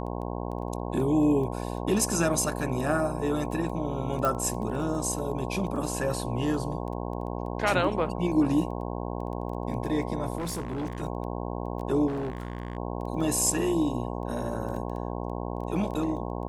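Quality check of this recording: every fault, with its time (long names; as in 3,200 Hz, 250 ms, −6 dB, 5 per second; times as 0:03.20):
mains buzz 60 Hz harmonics 18 −33 dBFS
surface crackle 10 per second −35 dBFS
0:04.25: click
0:10.38–0:11.02: clipping −28.5 dBFS
0:12.07–0:12.77: clipping −28.5 dBFS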